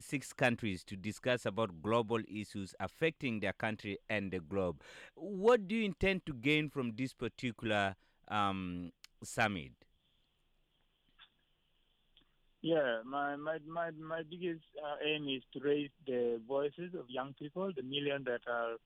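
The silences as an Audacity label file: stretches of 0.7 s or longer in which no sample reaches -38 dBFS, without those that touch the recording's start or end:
9.640000	12.640000	silence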